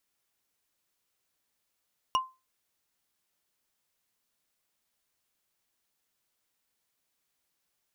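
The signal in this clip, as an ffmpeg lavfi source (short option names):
-f lavfi -i "aevalsrc='0.106*pow(10,-3*t/0.26)*sin(2*PI*1040*t)+0.0596*pow(10,-3*t/0.077)*sin(2*PI*2867.3*t)+0.0335*pow(10,-3*t/0.034)*sin(2*PI*5620.2*t)+0.0188*pow(10,-3*t/0.019)*sin(2*PI*9290.3*t)+0.0106*pow(10,-3*t/0.012)*sin(2*PI*13873.6*t)':d=0.45:s=44100"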